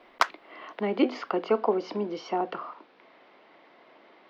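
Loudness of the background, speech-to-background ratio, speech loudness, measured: −29.0 LKFS, 0.0 dB, −29.0 LKFS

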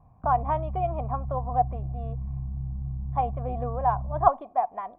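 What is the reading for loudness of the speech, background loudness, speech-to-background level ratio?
−28.0 LKFS, −34.5 LKFS, 6.5 dB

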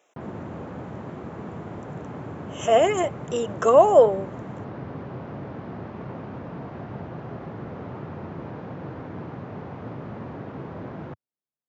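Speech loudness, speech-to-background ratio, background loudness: −19.5 LKFS, 17.0 dB, −36.5 LKFS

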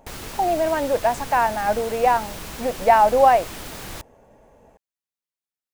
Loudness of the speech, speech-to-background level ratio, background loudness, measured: −20.0 LKFS, 14.5 dB, −34.5 LKFS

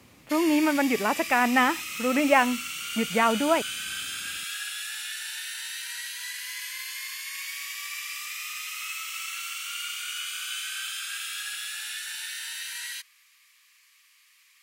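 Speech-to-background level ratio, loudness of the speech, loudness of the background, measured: 8.5 dB, −24.0 LKFS, −32.5 LKFS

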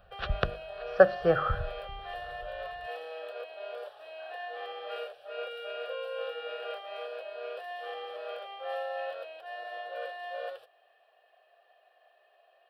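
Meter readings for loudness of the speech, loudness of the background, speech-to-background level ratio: −27.0 LKFS, −39.5 LKFS, 12.5 dB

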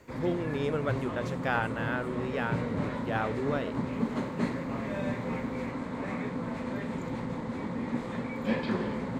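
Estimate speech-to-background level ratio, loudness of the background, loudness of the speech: 0.5 dB, −34.0 LKFS, −33.5 LKFS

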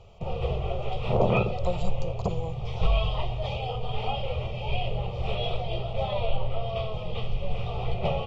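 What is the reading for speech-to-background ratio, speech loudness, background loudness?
1.0 dB, −30.5 LKFS, −31.5 LKFS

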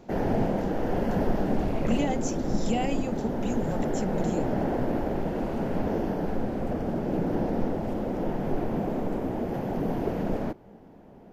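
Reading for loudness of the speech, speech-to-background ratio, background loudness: −32.5 LKFS, −3.0 dB, −29.5 LKFS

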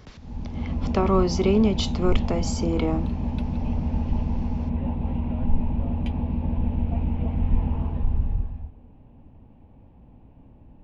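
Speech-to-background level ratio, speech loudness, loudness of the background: 3.5 dB, −24.5 LKFS, −28.0 LKFS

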